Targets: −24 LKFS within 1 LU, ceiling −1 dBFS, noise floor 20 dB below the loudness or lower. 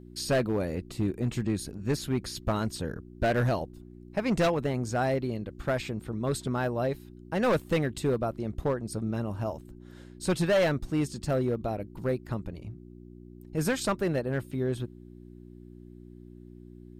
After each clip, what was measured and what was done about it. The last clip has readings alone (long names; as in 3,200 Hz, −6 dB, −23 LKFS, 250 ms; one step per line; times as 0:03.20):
share of clipped samples 1.4%; peaks flattened at −20.0 dBFS; mains hum 60 Hz; hum harmonics up to 360 Hz; level of the hum −47 dBFS; integrated loudness −30.0 LKFS; sample peak −20.0 dBFS; target loudness −24.0 LKFS
→ clipped peaks rebuilt −20 dBFS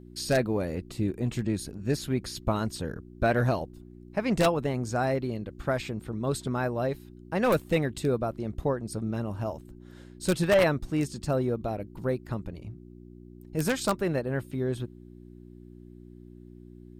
share of clipped samples 0.0%; mains hum 60 Hz; hum harmonics up to 360 Hz; level of the hum −47 dBFS
→ hum removal 60 Hz, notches 6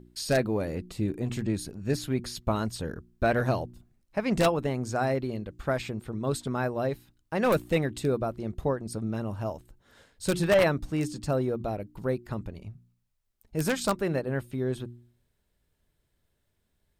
mains hum none found; integrated loudness −29.5 LKFS; sample peak −10.5 dBFS; target loudness −24.0 LKFS
→ level +5.5 dB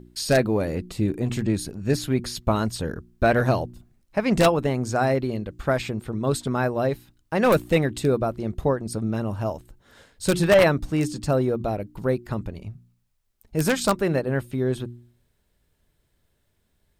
integrated loudness −24.0 LKFS; sample peak −5.0 dBFS; background noise floor −70 dBFS